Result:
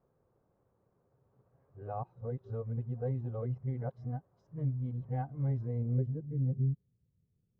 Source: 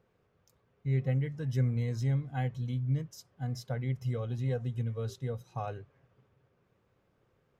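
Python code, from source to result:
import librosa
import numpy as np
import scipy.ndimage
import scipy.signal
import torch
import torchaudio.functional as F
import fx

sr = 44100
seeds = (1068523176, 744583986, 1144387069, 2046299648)

y = np.flip(x).copy()
y = fx.filter_sweep_lowpass(y, sr, from_hz=910.0, to_hz=170.0, start_s=5.57, end_s=6.86, q=1.2)
y = y * 10.0 ** (-3.0 / 20.0)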